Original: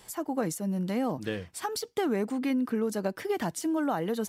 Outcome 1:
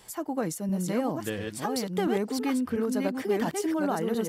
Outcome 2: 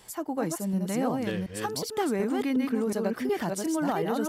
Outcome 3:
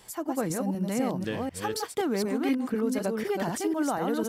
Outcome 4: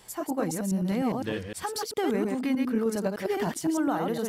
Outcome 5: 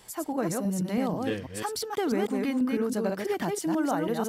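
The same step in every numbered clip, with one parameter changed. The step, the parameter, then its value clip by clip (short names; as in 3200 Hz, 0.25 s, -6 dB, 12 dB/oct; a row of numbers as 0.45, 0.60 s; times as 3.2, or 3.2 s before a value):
reverse delay, time: 0.691, 0.366, 0.249, 0.102, 0.163 s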